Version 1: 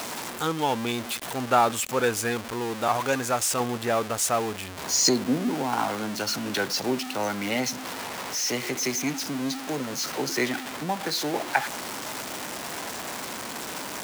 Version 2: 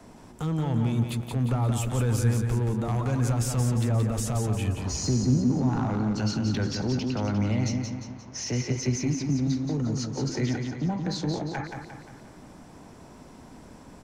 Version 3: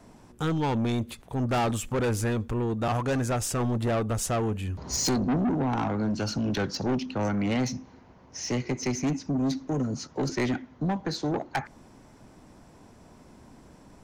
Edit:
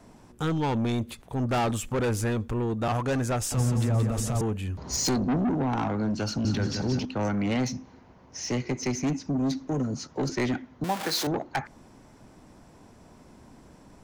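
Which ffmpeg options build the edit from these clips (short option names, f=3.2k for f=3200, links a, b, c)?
-filter_complex "[1:a]asplit=2[a][b];[2:a]asplit=4[c][d][e][f];[c]atrim=end=3.522[g];[a]atrim=start=3.518:end=4.412[h];[d]atrim=start=4.408:end=6.452[i];[b]atrim=start=6.448:end=7.052[j];[e]atrim=start=7.048:end=10.842[k];[0:a]atrim=start=10.838:end=11.272[l];[f]atrim=start=11.268[m];[g][h]acrossfade=d=0.004:c1=hsin:c2=hsin[n];[n][i]acrossfade=d=0.004:c1=hsin:c2=hsin[o];[o][j]acrossfade=d=0.004:c1=hsin:c2=hsin[p];[p][k]acrossfade=d=0.004:c1=hsin:c2=hsin[q];[q][l]acrossfade=d=0.004:c1=hsin:c2=hsin[r];[r][m]acrossfade=d=0.004:c1=hsin:c2=hsin"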